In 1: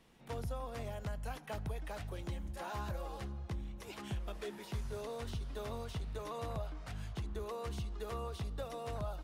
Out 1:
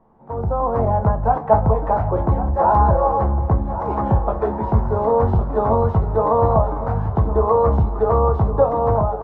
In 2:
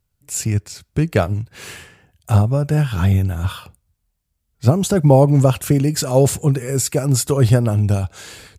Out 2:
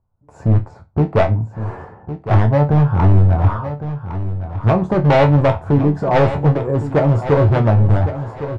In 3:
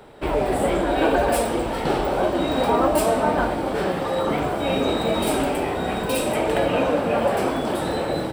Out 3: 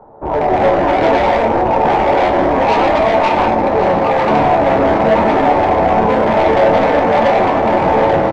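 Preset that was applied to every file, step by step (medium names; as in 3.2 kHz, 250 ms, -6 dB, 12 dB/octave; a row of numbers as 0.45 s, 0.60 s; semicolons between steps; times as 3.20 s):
level rider gain up to 15.5 dB; FFT filter 410 Hz 0 dB, 910 Hz +9 dB, 2.8 kHz -29 dB; overload inside the chain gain 11.5 dB; distance through air 100 m; chord resonator D2 major, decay 0.22 s; on a send: feedback delay 1109 ms, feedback 29%, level -11.5 dB; on the sum: peak normalisation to -2 dBFS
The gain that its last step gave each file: +17.5 dB, +11.5 dB, +11.0 dB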